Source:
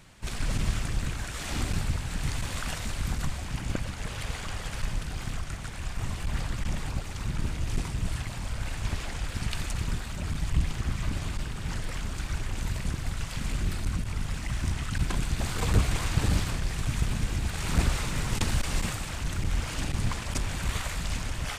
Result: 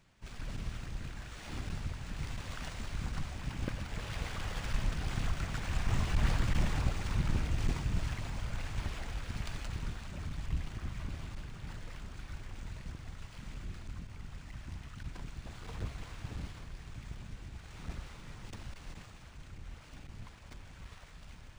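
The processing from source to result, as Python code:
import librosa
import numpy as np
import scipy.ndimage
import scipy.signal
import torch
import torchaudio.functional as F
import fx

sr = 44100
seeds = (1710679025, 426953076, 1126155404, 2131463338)

y = fx.self_delay(x, sr, depth_ms=0.31)
y = fx.doppler_pass(y, sr, speed_mps=7, closest_m=8.9, pass_at_s=6.15)
y = y + 10.0 ** (-14.0 / 20.0) * np.pad(y, (int(562 * sr / 1000.0), 0))[:len(y)]
y = np.interp(np.arange(len(y)), np.arange(len(y))[::3], y[::3])
y = F.gain(torch.from_numpy(y), 1.5).numpy()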